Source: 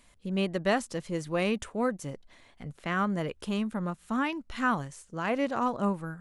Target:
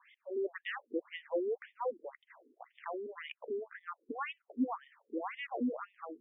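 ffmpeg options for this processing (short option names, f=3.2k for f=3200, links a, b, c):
-filter_complex "[0:a]acrossover=split=290|920[a][b][c];[a]acompressor=threshold=-33dB:ratio=4[d];[b]acompressor=threshold=-41dB:ratio=4[e];[c]acompressor=threshold=-45dB:ratio=4[f];[d][e][f]amix=inputs=3:normalize=0,afftfilt=real='re*between(b*sr/1024,320*pow(2600/320,0.5+0.5*sin(2*PI*1.9*pts/sr))/1.41,320*pow(2600/320,0.5+0.5*sin(2*PI*1.9*pts/sr))*1.41)':imag='im*between(b*sr/1024,320*pow(2600/320,0.5+0.5*sin(2*PI*1.9*pts/sr))/1.41,320*pow(2600/320,0.5+0.5*sin(2*PI*1.9*pts/sr))*1.41)':win_size=1024:overlap=0.75,volume=6.5dB"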